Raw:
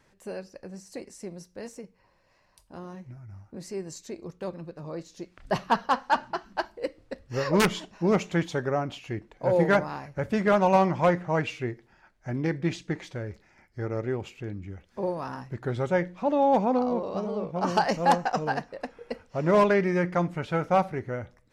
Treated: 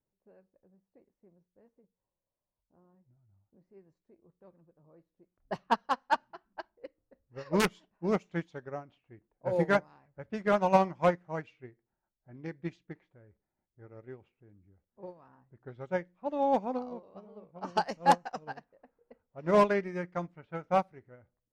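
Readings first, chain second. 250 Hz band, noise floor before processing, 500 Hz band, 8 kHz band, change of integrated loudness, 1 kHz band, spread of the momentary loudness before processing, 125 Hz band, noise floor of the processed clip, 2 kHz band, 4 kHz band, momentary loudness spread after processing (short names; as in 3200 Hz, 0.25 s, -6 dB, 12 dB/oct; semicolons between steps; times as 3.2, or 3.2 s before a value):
-8.0 dB, -65 dBFS, -6.0 dB, -7.5 dB, -4.0 dB, -4.5 dB, 19 LU, -10.0 dB, under -85 dBFS, -6.5 dB, -7.0 dB, 23 LU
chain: low-pass opened by the level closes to 660 Hz, open at -20.5 dBFS; upward expander 2.5:1, over -32 dBFS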